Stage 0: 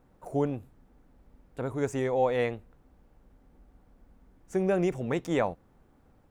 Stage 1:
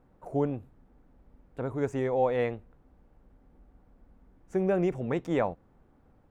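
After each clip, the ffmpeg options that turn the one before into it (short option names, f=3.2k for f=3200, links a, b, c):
-af "highshelf=f=3.7k:g=-11.5"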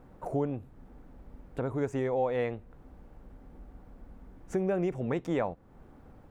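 -af "acompressor=threshold=-44dB:ratio=2,volume=8.5dB"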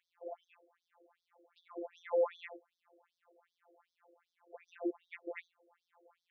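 -af "afftfilt=real='hypot(re,im)*cos(PI*b)':imag='0':win_size=1024:overlap=0.75,afftfilt=real='re*between(b*sr/1024,450*pow(4700/450,0.5+0.5*sin(2*PI*2.6*pts/sr))/1.41,450*pow(4700/450,0.5+0.5*sin(2*PI*2.6*pts/sr))*1.41)':imag='im*between(b*sr/1024,450*pow(4700/450,0.5+0.5*sin(2*PI*2.6*pts/sr))/1.41,450*pow(4700/450,0.5+0.5*sin(2*PI*2.6*pts/sr))*1.41)':win_size=1024:overlap=0.75,volume=1.5dB"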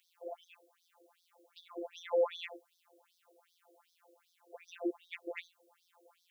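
-af "aexciter=amount=1.7:drive=9.9:freq=2.7k,volume=1dB"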